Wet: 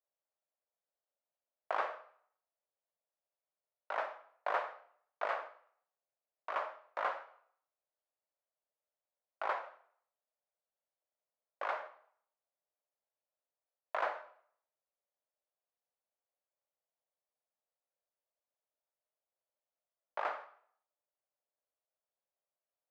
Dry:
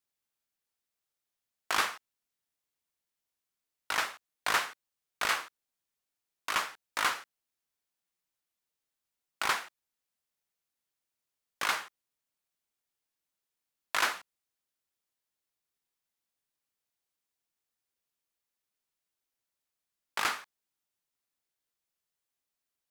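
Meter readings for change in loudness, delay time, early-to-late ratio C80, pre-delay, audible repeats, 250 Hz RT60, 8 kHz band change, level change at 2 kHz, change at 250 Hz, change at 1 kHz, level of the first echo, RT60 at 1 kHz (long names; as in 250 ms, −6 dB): −7.5 dB, no echo audible, 16.0 dB, 33 ms, no echo audible, 0.55 s, below −30 dB, −10.5 dB, −12.5 dB, −4.0 dB, no echo audible, 0.60 s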